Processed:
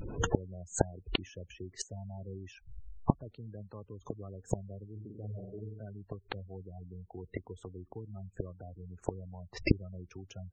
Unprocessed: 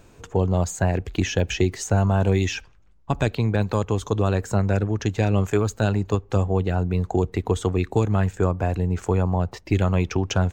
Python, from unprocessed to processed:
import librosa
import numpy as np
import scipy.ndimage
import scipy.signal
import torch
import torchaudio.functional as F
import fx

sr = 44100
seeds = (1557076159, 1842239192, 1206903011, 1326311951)

y = fx.room_flutter(x, sr, wall_m=8.1, rt60_s=1.0, at=(4.95, 5.79), fade=0.02)
y = fx.gate_flip(y, sr, shuts_db=-21.0, range_db=-35)
y = fx.spec_gate(y, sr, threshold_db=-15, keep='strong')
y = y * librosa.db_to_amplitude(11.5)